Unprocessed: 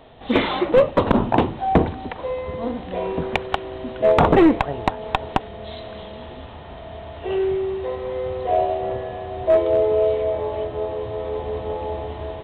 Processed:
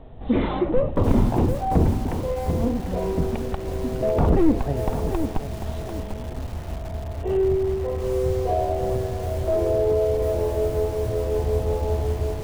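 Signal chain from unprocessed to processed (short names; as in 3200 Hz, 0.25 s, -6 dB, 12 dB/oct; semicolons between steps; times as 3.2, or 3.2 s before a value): limiter -13 dBFS, peak gain reduction 10 dB; tilt -4 dB/oct; lo-fi delay 0.744 s, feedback 35%, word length 5-bit, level -8 dB; gain -5 dB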